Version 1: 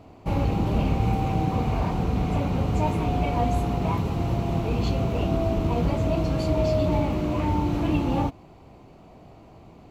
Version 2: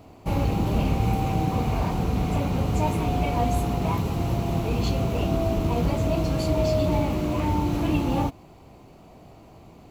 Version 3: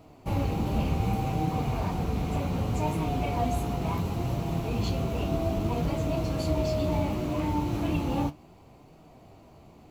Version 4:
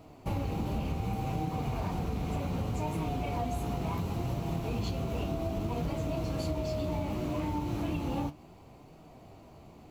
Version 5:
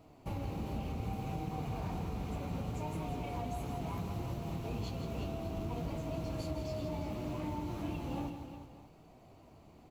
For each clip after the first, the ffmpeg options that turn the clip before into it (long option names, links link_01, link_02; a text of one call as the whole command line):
ffmpeg -i in.wav -af "highshelf=frequency=6500:gain=11" out.wav
ffmpeg -i in.wav -af "flanger=delay=6.3:depth=7.7:regen=61:speed=0.67:shape=sinusoidal" out.wav
ffmpeg -i in.wav -af "acompressor=threshold=-29dB:ratio=6" out.wav
ffmpeg -i in.wav -af "aecho=1:1:164|359|592:0.376|0.299|0.141,volume=-6.5dB" out.wav